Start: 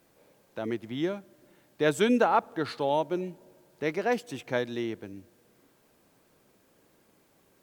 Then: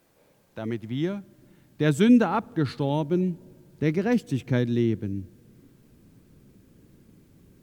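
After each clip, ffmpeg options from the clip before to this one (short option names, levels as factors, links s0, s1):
-af "asubboost=boost=11:cutoff=220"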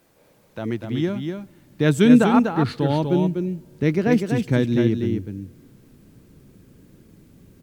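-af "aecho=1:1:245:0.531,volume=1.58"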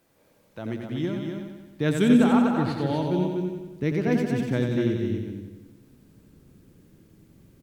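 -af "aecho=1:1:90|180|270|360|450|540|630|720:0.531|0.303|0.172|0.0983|0.056|0.0319|0.0182|0.0104,volume=0.501"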